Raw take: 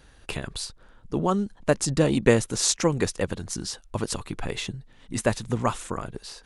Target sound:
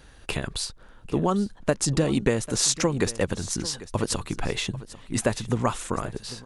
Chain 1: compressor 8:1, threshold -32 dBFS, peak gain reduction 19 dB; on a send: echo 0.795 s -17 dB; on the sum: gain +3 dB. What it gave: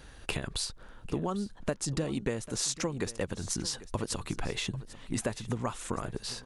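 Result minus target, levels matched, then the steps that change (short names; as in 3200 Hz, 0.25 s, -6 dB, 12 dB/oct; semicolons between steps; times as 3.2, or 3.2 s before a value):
compressor: peak gain reduction +9.5 dB
change: compressor 8:1, threshold -21 dBFS, peak gain reduction 9.5 dB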